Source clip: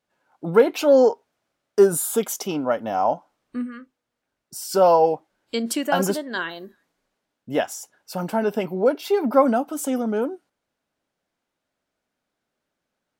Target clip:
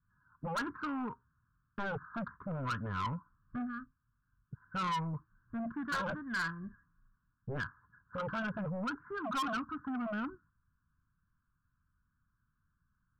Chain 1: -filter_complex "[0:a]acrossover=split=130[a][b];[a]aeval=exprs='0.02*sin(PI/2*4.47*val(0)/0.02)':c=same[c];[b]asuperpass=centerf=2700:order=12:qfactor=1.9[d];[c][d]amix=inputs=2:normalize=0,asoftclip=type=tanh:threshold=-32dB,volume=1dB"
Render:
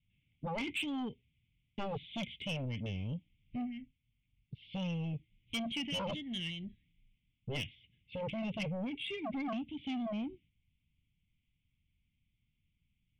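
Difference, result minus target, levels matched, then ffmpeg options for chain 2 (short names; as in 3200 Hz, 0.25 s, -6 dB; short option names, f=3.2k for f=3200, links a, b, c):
1000 Hz band -7.5 dB
-filter_complex "[0:a]acrossover=split=130[a][b];[a]aeval=exprs='0.02*sin(PI/2*4.47*val(0)/0.02)':c=same[c];[b]asuperpass=centerf=1300:order=12:qfactor=1.9[d];[c][d]amix=inputs=2:normalize=0,asoftclip=type=tanh:threshold=-32dB,volume=1dB"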